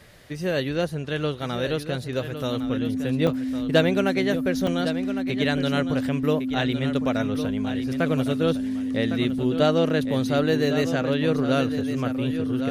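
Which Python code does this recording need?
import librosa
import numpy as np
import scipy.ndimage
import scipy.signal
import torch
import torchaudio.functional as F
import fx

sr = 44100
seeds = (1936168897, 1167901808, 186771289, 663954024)

y = fx.notch(x, sr, hz=260.0, q=30.0)
y = fx.fix_interpolate(y, sr, at_s=(3.27, 4.67), length_ms=3.2)
y = fx.fix_echo_inverse(y, sr, delay_ms=1108, level_db=-10.0)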